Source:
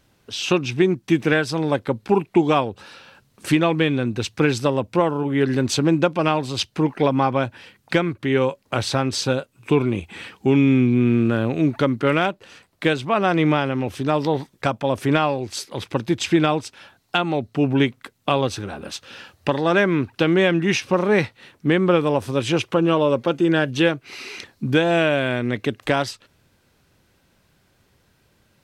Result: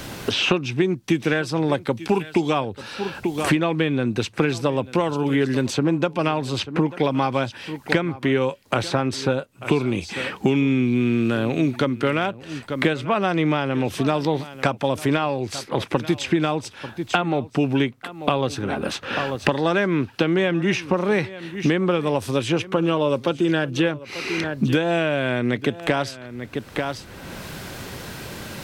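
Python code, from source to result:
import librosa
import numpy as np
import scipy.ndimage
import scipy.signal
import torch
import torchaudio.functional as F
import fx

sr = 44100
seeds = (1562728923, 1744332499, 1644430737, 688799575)

p1 = x + fx.echo_single(x, sr, ms=890, db=-20.5, dry=0)
p2 = fx.band_squash(p1, sr, depth_pct=100)
y = p2 * 10.0 ** (-2.5 / 20.0)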